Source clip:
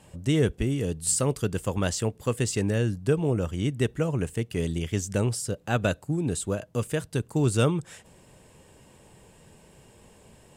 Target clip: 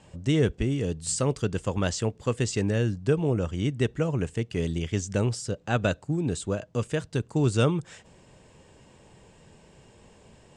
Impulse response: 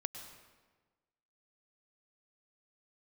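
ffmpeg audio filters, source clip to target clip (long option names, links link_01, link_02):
-af "lowpass=frequency=7500:width=0.5412,lowpass=frequency=7500:width=1.3066"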